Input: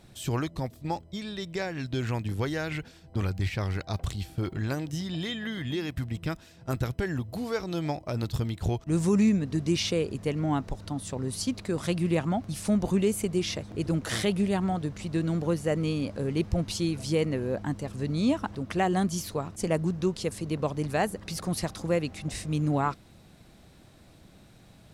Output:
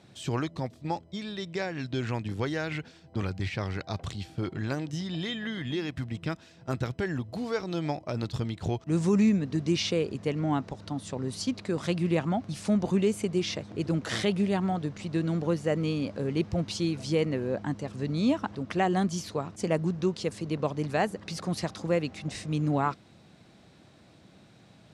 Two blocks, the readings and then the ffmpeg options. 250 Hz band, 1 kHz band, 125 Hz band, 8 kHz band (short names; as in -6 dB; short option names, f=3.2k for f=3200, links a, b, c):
-0.5 dB, 0.0 dB, -1.5 dB, -4.0 dB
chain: -af "highpass=110,lowpass=6.7k"